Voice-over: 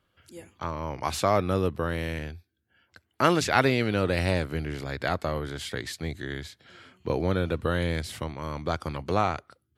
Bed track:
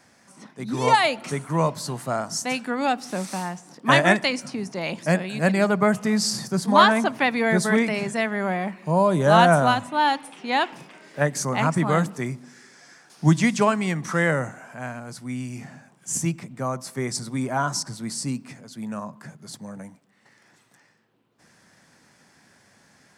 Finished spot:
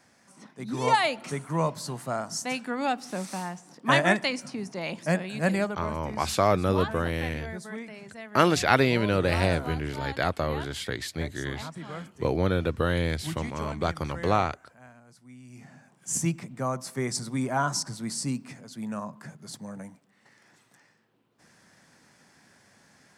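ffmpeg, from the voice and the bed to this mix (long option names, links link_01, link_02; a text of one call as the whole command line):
ffmpeg -i stem1.wav -i stem2.wav -filter_complex "[0:a]adelay=5150,volume=1dB[link_01];[1:a]volume=11.5dB,afade=type=out:start_time=5.56:duration=0.21:silence=0.211349,afade=type=in:start_time=15.42:duration=0.71:silence=0.158489[link_02];[link_01][link_02]amix=inputs=2:normalize=0" out.wav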